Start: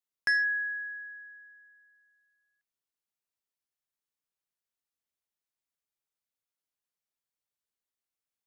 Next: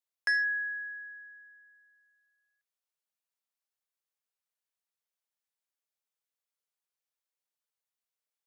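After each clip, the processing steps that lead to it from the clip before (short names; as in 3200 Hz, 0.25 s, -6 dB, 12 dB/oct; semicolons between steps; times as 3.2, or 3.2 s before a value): steep high-pass 420 Hz 96 dB/oct; gain -1.5 dB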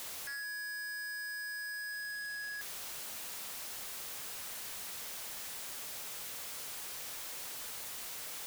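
infinite clipping; gain +1 dB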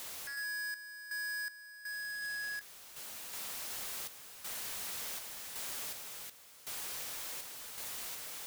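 random-step tremolo 2.7 Hz, depth 85%; gain +2.5 dB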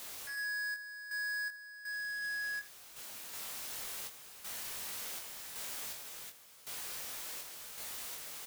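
early reflections 21 ms -4.5 dB, 79 ms -15.5 dB; gain -2.5 dB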